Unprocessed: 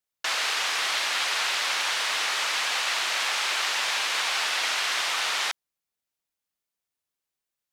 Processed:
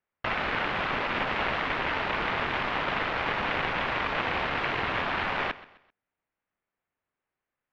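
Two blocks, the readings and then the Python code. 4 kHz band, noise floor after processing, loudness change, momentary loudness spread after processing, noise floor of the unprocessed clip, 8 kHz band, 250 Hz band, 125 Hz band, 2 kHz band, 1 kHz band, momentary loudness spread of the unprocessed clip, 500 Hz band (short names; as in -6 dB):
-11.0 dB, under -85 dBFS, -4.0 dB, 1 LU, under -85 dBFS, under -25 dB, +17.0 dB, n/a, -2.0 dB, +2.0 dB, 1 LU, +7.5 dB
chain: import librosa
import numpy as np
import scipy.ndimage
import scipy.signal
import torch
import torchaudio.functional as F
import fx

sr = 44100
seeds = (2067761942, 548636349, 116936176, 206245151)

p1 = fx.self_delay(x, sr, depth_ms=0.49)
p2 = scipy.signal.sosfilt(scipy.signal.butter(4, 2200.0, 'lowpass', fs=sr, output='sos'), p1)
p3 = p2 + fx.echo_feedback(p2, sr, ms=130, feedback_pct=36, wet_db=-18, dry=0)
y = p3 * librosa.db_to_amplitude(7.5)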